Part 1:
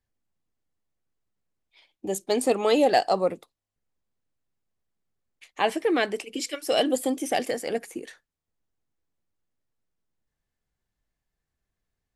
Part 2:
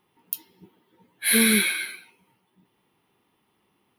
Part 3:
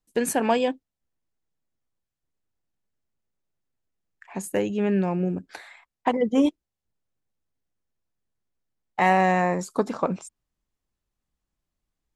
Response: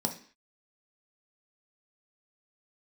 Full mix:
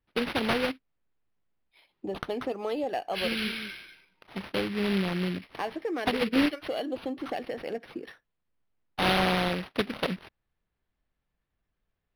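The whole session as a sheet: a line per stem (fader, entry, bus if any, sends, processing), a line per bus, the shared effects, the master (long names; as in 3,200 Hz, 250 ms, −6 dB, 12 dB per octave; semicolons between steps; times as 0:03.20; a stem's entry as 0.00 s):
0.0 dB, 0.00 s, no send, no echo send, downward compressor 2.5 to 1, threshold −33 dBFS, peak gain reduction 12 dB
−12.5 dB, 1.90 s, no send, echo send −8 dB, high-shelf EQ 9,800 Hz +9.5 dB
−4.0 dB, 0.00 s, no send, no echo send, short delay modulated by noise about 2,400 Hz, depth 0.25 ms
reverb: not used
echo: single-tap delay 194 ms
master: linearly interpolated sample-rate reduction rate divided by 6×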